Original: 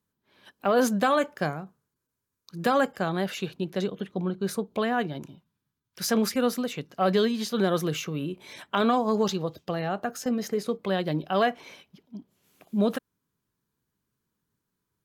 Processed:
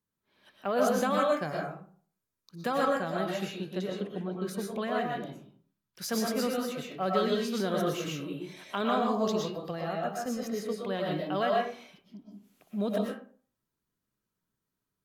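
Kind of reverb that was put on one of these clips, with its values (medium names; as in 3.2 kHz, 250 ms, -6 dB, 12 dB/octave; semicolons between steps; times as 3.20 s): algorithmic reverb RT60 0.46 s, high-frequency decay 0.55×, pre-delay 80 ms, DRR -2 dB; trim -7.5 dB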